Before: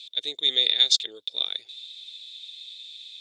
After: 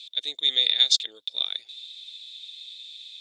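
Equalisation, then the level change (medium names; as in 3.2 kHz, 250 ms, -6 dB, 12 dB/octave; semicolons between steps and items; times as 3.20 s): bass shelf 150 Hz -12 dB; peaking EQ 400 Hz -7 dB 0.65 oct; 0.0 dB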